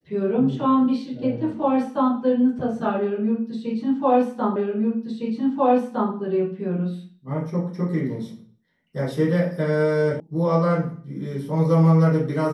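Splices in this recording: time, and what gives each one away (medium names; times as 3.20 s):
4.56 s: repeat of the last 1.56 s
10.20 s: sound stops dead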